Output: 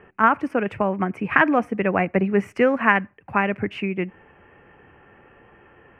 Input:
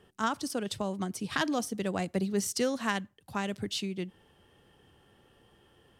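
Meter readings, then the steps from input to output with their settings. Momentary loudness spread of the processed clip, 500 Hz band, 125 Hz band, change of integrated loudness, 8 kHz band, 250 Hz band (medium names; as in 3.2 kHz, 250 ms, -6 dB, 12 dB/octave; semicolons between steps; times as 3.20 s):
9 LU, +11.5 dB, +8.5 dB, +11.0 dB, under -20 dB, +9.0 dB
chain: FFT filter 130 Hz 0 dB, 2.5 kHz +9 dB, 3.7 kHz -28 dB; trim +7.5 dB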